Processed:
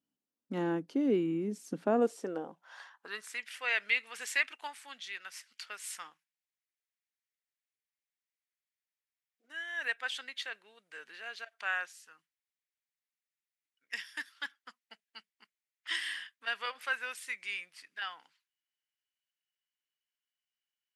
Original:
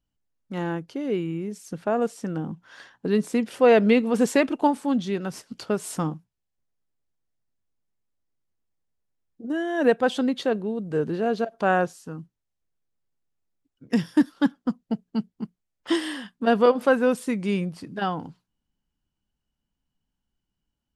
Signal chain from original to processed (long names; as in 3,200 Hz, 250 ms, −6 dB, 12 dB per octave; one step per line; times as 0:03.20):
high-pass filter sweep 250 Hz → 2,000 Hz, 0:01.90–0:03.42
level −6.5 dB